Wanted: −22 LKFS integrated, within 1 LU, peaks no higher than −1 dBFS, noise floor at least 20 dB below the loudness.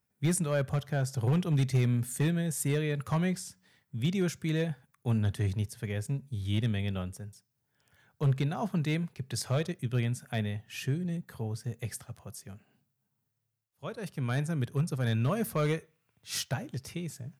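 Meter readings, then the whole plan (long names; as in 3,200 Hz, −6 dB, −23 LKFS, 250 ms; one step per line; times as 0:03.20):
share of clipped samples 0.6%; peaks flattened at −21.0 dBFS; integrated loudness −32.0 LKFS; sample peak −21.0 dBFS; target loudness −22.0 LKFS
→ clipped peaks rebuilt −21 dBFS
level +10 dB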